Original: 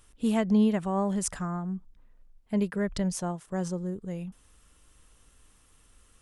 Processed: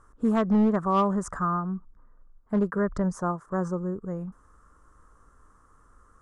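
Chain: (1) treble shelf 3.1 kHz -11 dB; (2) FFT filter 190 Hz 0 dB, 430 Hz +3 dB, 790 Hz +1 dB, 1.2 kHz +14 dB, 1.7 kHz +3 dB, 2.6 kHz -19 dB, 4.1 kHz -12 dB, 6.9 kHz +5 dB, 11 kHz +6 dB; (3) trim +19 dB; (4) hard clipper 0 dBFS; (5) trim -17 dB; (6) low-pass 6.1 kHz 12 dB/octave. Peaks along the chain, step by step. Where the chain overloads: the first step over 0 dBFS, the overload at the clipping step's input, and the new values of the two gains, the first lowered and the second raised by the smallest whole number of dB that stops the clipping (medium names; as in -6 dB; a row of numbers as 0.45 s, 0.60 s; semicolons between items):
-14.5 dBFS, -13.5 dBFS, +5.5 dBFS, 0.0 dBFS, -17.0 dBFS, -17.0 dBFS; step 3, 5.5 dB; step 3 +13 dB, step 5 -11 dB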